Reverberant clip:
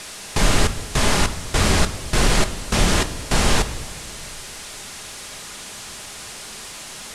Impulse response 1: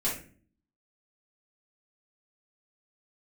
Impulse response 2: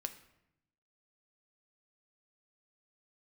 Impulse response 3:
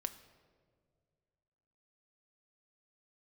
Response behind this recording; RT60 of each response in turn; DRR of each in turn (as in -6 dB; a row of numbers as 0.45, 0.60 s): 3; 0.45, 0.80, 2.0 s; -8.0, 7.5, 8.5 dB